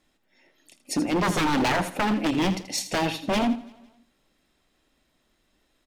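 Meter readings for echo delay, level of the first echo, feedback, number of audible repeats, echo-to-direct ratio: 81 ms, -12.5 dB, no steady repeat, 4, -12.0 dB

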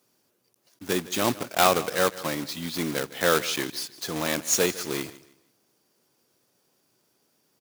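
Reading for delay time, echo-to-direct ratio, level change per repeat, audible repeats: 0.157 s, -17.5 dB, -11.0 dB, 2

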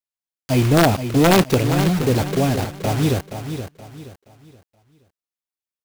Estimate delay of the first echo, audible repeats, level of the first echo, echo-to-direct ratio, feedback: 0.474 s, 3, -9.5 dB, -9.0 dB, 33%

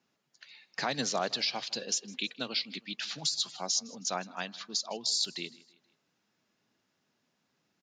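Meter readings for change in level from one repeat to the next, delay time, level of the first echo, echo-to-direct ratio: -7.0 dB, 0.159 s, -22.0 dB, -21.0 dB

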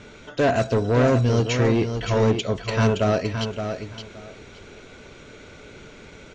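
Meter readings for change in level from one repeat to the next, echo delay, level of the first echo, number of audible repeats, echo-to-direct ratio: -14.5 dB, 0.569 s, -7.5 dB, 2, -7.5 dB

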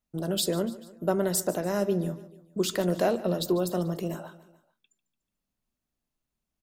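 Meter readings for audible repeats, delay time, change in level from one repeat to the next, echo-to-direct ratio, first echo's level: 3, 0.146 s, -5.5 dB, -16.0 dB, -17.5 dB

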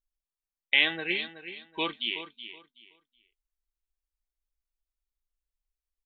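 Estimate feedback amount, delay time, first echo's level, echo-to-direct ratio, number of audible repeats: 23%, 0.374 s, -12.0 dB, -12.0 dB, 2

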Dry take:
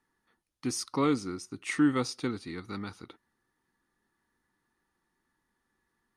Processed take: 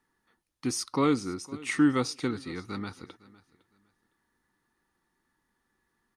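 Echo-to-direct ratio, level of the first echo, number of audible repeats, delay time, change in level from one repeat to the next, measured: -21.0 dB, -21.0 dB, 2, 0.508 s, -13.0 dB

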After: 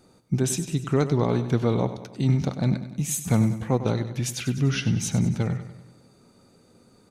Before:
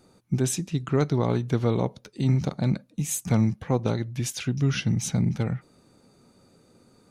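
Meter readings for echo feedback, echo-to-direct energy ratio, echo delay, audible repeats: 53%, -10.5 dB, 97 ms, 5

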